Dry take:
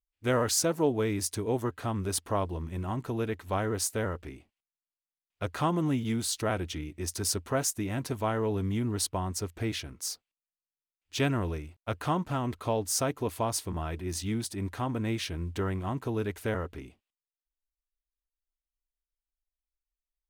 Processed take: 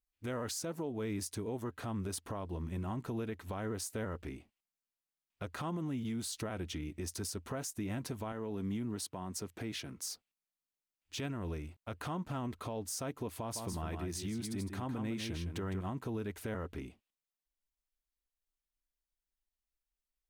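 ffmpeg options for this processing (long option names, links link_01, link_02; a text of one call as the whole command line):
ffmpeg -i in.wav -filter_complex "[0:a]asettb=1/sr,asplit=3[link_01][link_02][link_03];[link_01]atrim=end=8.324[link_04];[link_02]atrim=start=8.32:end=9.97,asetpts=PTS-STARTPTS,afade=type=in:duration=0.004:curve=qsin,afade=type=out:start_time=1.646:duration=0.004:curve=qsin,highpass=frequency=110:width=0.5412,highpass=frequency=110:width=1.3066[link_05];[link_03]atrim=start=9.966[link_06];[link_04][link_05]acrossfade=duration=0.004:curve1=hsin:curve2=qsin[link_07];[link_07][link_06]acrossfade=duration=0.004:curve1=qsin:curve2=hsin,asettb=1/sr,asplit=3[link_08][link_09][link_10];[link_08]atrim=end=13.354[link_11];[link_09]atrim=start=13.35:end=15.81,asetpts=PTS-STARTPTS,afade=type=in:duration=0.004:curve=qsin,afade=type=out:start_time=2.456:duration=0.004:curve=qsin,aecho=1:1:158:0.422,atrim=end_sample=108486[link_12];[link_10]atrim=start=15.806[link_13];[link_11][link_12]acrossfade=duration=0.004:curve1=hsin:curve2=qsin[link_14];[link_14][link_13]acrossfade=duration=0.004:curve1=qsin:curve2=hsin,equalizer=frequency=210:width_type=o:width=0.75:gain=4,acompressor=threshold=-34dB:ratio=3,alimiter=level_in=5dB:limit=-24dB:level=0:latency=1:release=84,volume=-5dB,volume=-1dB" out.wav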